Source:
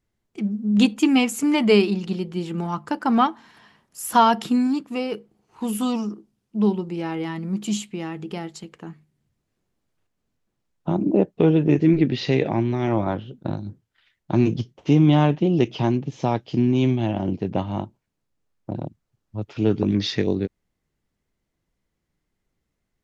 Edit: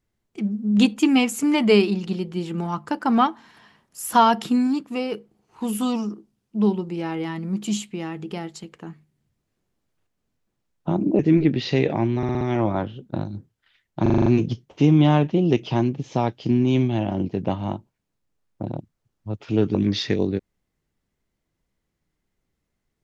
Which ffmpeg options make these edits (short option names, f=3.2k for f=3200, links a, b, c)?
-filter_complex "[0:a]asplit=12[a][b][c][d][e][f][g][h][i][j][k][l];[a]atrim=end=11.192[m];[b]atrim=start=11.748:end=12.792[n];[c]atrim=start=12.728:end=12.792[o];[d]atrim=start=12.728:end=12.792[p];[e]atrim=start=12.728:end=12.792[q];[f]atrim=start=12.728:end=14.382[r];[g]atrim=start=14.338:end=14.382[s];[h]atrim=start=14.338:end=14.382[t];[i]atrim=start=14.338:end=14.382[u];[j]atrim=start=14.338:end=14.382[v];[k]atrim=start=14.338:end=14.382[w];[l]atrim=start=14.338[x];[m][n]acrossfade=d=0.004:c1=hsin:c2=hsin[y];[y][o]acrossfade=d=0.004:c1=hsin:c2=hsin[z];[z][p]acrossfade=d=0.004:c1=hsin:c2=hsin[aa];[aa][q]acrossfade=d=0.004:c1=hsin:c2=hsin[ab];[ab][r]acrossfade=d=0.004:c1=hsin:c2=hsin[ac];[ac][s]acrossfade=d=0.004:c1=hsin:c2=hsin[ad];[ad][t]acrossfade=d=0.004:c1=hsin:c2=hsin[ae];[ae][u]acrossfade=d=0.004:c1=hsin:c2=hsin[af];[af][v]acrossfade=d=0.004:c1=hsin:c2=hsin[ag];[ag][w]acrossfade=d=0.004:c1=hsin:c2=hsin[ah];[ah][x]acrossfade=d=0.004:c1=hsin:c2=hsin"